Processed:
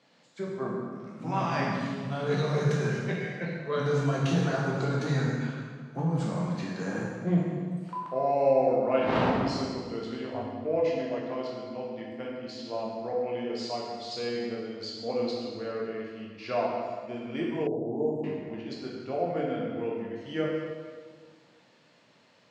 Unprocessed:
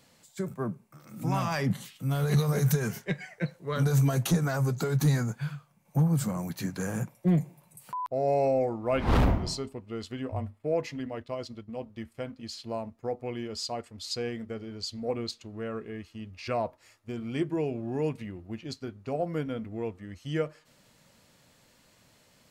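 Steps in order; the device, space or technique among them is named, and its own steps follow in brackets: supermarket ceiling speaker (BPF 230–5800 Hz; reverb RT60 1.7 s, pre-delay 12 ms, DRR -4 dB); 17.67–18.24 elliptic band-stop 780–7800 Hz, stop band 40 dB; air absorption 84 m; gain -2 dB

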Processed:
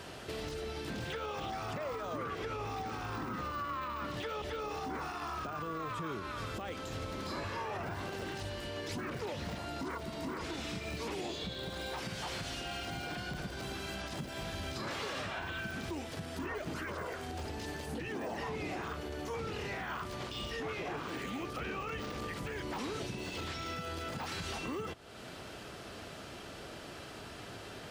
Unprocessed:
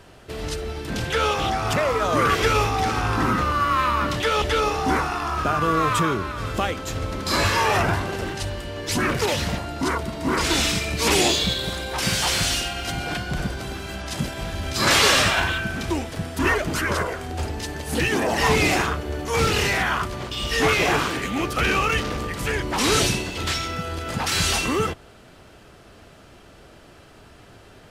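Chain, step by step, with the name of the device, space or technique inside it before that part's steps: broadcast voice chain (HPF 110 Hz 6 dB/oct; de-esser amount 95%; compressor 3:1, threshold -43 dBFS, peak gain reduction 18 dB; bell 4200 Hz +3 dB 1.4 oct; limiter -32 dBFS, peak gain reduction 5.5 dB); gain +2 dB

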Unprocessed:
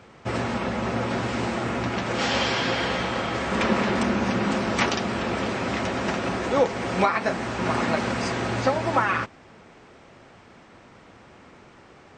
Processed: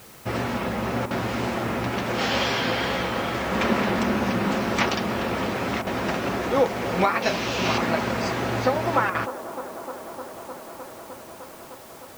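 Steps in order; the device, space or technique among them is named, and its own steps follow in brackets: 7.22–7.78 band shelf 4000 Hz +10.5 dB; worn cassette (LPF 7600 Hz; wow and flutter; level dips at 1.06/5.82/9.1, 46 ms -8 dB; white noise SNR 23 dB); band-limited delay 0.305 s, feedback 85%, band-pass 580 Hz, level -13 dB

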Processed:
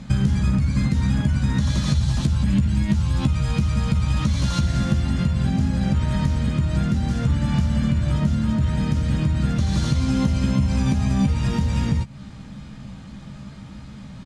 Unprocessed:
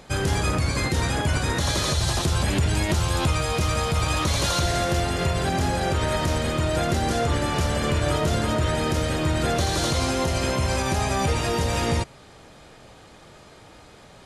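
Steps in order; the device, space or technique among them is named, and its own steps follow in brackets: jukebox (LPF 7800 Hz 12 dB/oct; resonant low shelf 290 Hz +11 dB, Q 3; compressor, threshold -18 dBFS, peak gain reduction 13.5 dB); notch 720 Hz, Q 12; doubler 15 ms -7 dB

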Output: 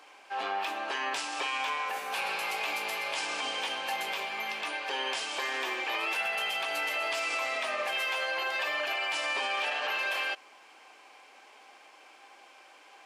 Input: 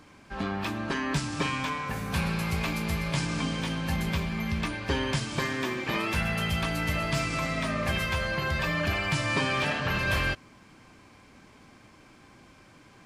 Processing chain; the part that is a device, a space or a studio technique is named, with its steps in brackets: laptop speaker (HPF 440 Hz 24 dB/oct; bell 790 Hz +9 dB 0.23 oct; bell 2800 Hz +6.5 dB 0.52 oct; limiter -23 dBFS, peak gain reduction 8 dB)

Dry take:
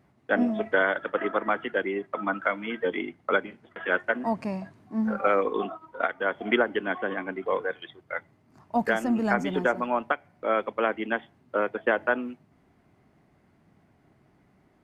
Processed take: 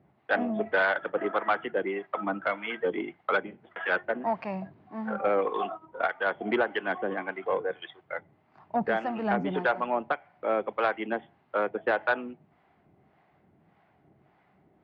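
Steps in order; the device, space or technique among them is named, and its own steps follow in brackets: guitar amplifier with harmonic tremolo (harmonic tremolo 1.7 Hz, depth 70%, crossover 590 Hz; soft clip -20 dBFS, distortion -15 dB; speaker cabinet 81–3600 Hz, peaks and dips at 110 Hz -5 dB, 250 Hz -6 dB, 780 Hz +5 dB); gain +3 dB

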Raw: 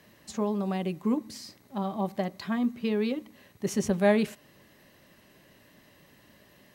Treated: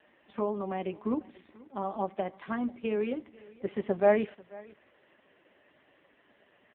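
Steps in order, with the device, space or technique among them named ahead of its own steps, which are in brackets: 2.95–3.83 HPF 92 Hz 6 dB/oct; satellite phone (BPF 320–3100 Hz; echo 0.489 s -22 dB; gain +1.5 dB; AMR-NB 5.15 kbps 8000 Hz)

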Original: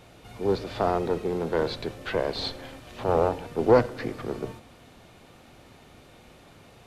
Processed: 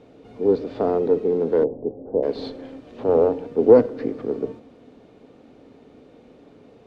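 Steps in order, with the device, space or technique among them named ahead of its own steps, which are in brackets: inside a cardboard box (LPF 5900 Hz 12 dB/oct; small resonant body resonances 280/430 Hz, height 18 dB, ringing for 30 ms); 1.64–2.23 elliptic low-pass 820 Hz, stop band 80 dB; gain -8.5 dB

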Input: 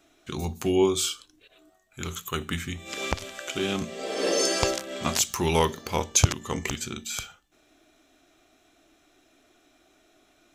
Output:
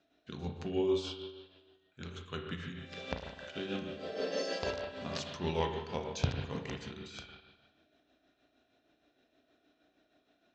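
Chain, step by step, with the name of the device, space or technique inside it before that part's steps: combo amplifier with spring reverb and tremolo (spring tank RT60 1.3 s, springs 34/50 ms, chirp 30 ms, DRR 0.5 dB; tremolo 6.4 Hz, depth 49%; speaker cabinet 84–4400 Hz, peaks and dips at 110 Hz -7 dB, 340 Hz -8 dB, 850 Hz -6 dB, 1200 Hz -9 dB, 2200 Hz -9 dB, 3200 Hz -5 dB); gain -6 dB

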